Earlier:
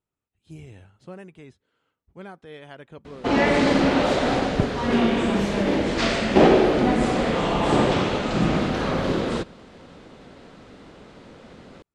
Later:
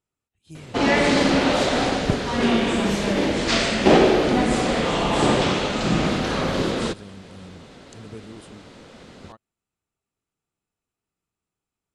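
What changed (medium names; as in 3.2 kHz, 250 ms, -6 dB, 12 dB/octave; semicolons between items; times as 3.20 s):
background: entry -2.50 s; master: add treble shelf 3.2 kHz +8.5 dB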